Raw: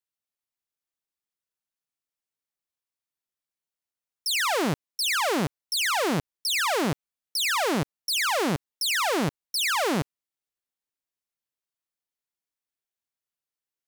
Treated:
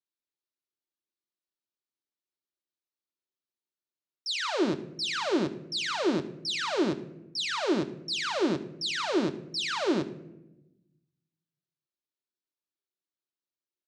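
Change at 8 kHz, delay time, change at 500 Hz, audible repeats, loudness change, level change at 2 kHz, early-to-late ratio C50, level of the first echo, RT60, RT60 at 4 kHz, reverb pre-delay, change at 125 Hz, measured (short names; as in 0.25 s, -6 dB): -11.5 dB, 80 ms, -1.0 dB, 1, -4.5 dB, -7.5 dB, 14.0 dB, -19.5 dB, 0.95 s, 0.55 s, 3 ms, -7.5 dB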